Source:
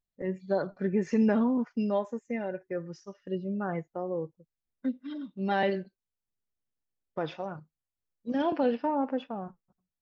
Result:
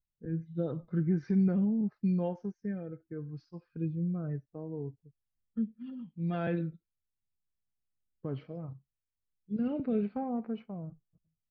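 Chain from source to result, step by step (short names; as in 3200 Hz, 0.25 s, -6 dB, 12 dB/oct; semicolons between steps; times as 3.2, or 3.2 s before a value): varispeed -13%; rotary speaker horn 0.75 Hz; tone controls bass +12 dB, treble -6 dB; gain -7.5 dB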